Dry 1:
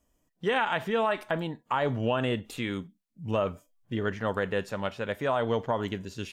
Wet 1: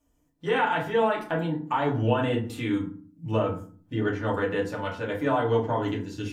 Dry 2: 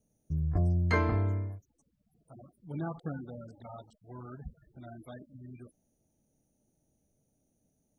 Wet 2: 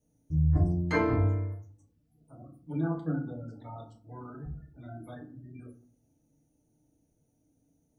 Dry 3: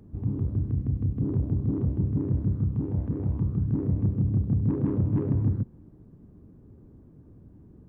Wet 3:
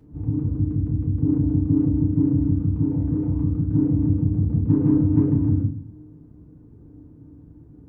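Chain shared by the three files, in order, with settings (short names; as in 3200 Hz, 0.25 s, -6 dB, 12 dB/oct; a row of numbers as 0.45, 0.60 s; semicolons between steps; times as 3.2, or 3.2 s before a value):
FDN reverb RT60 0.43 s, low-frequency decay 1.6×, high-frequency decay 0.55×, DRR -3.5 dB; gain -4 dB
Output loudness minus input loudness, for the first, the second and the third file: +3.0, +2.5, +6.0 LU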